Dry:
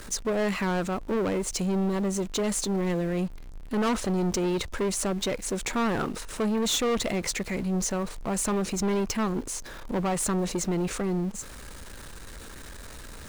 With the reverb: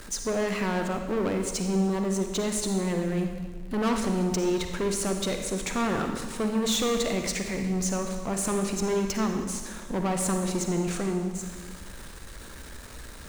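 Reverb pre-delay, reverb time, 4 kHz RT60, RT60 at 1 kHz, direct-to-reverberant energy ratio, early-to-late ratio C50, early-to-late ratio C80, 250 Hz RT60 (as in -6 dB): 38 ms, 1.4 s, 1.3 s, 1.4 s, 4.5 dB, 5.0 dB, 7.0 dB, 1.5 s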